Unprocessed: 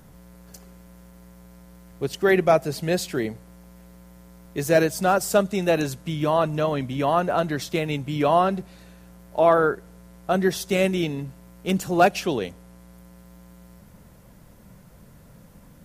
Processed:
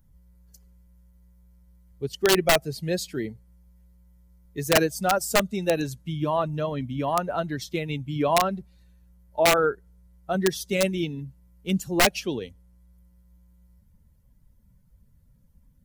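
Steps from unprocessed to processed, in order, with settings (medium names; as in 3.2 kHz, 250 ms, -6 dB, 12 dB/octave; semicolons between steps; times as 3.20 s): expander on every frequency bin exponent 1.5; integer overflow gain 11.5 dB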